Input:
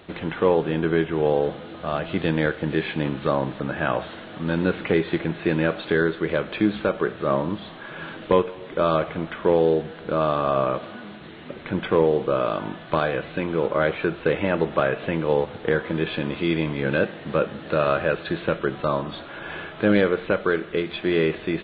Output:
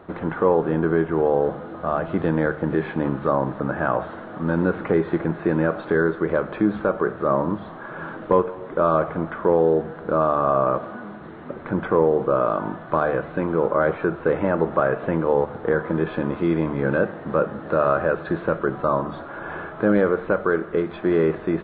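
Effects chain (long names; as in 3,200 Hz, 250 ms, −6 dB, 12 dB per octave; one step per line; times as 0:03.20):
high shelf with overshoot 1,900 Hz −13 dB, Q 1.5
in parallel at +2 dB: brickwall limiter −14 dBFS, peak gain reduction 7 dB
on the sum: mains-hum notches 50/100/150 Hz
level −4.5 dB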